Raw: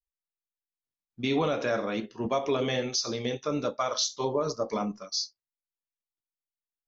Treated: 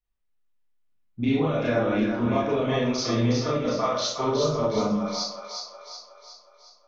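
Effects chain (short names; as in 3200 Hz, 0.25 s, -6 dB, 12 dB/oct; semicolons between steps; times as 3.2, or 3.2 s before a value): tone controls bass +8 dB, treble -13 dB; compressor, threshold -30 dBFS, peak gain reduction 10 dB; split-band echo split 630 Hz, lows 85 ms, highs 0.365 s, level -5 dB; Schroeder reverb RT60 0.34 s, combs from 26 ms, DRR -6 dB; gain +2 dB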